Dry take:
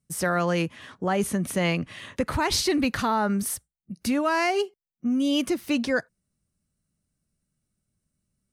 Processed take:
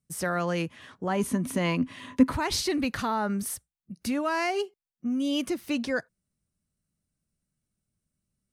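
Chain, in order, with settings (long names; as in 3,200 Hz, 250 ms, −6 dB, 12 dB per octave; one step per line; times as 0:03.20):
0:01.08–0:02.31: hollow resonant body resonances 260/1,000 Hz, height 14 dB → 17 dB, ringing for 90 ms
level −4 dB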